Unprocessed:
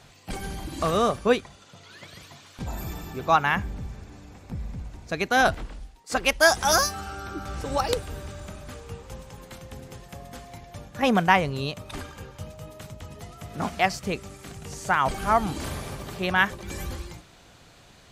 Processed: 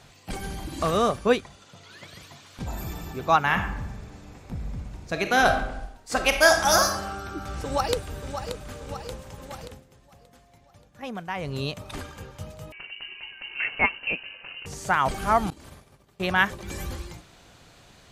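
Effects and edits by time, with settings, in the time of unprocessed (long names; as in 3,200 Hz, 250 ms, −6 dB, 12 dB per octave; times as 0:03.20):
0:02.10–0:02.72: delay throw 400 ms, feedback 60%, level −13.5 dB
0:03.41–0:07.05: thrown reverb, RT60 0.82 s, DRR 5 dB
0:07.64–0:08.69: delay throw 580 ms, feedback 65%, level −9 dB
0:09.63–0:11.56: duck −14 dB, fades 0.21 s
0:12.72–0:14.66: voice inversion scrambler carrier 2,900 Hz
0:15.50–0:16.20: downward expander −23 dBFS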